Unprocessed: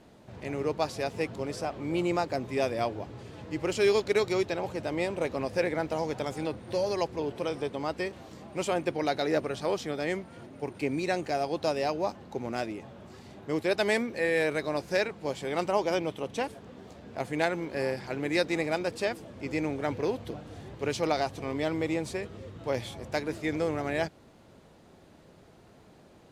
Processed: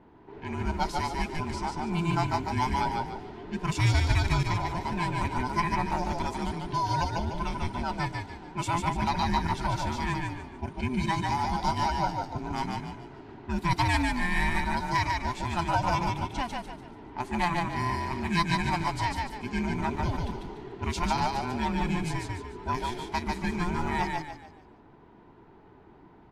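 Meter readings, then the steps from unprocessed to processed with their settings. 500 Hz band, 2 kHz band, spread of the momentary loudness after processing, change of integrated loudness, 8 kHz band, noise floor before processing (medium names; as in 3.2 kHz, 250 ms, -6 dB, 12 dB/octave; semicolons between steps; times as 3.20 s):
-9.0 dB, +2.0 dB, 10 LU, +1.0 dB, +2.0 dB, -56 dBFS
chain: every band turned upside down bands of 500 Hz; level-controlled noise filter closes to 1.7 kHz, open at -28.5 dBFS; frequency-shifting echo 146 ms, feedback 36%, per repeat -34 Hz, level -3 dB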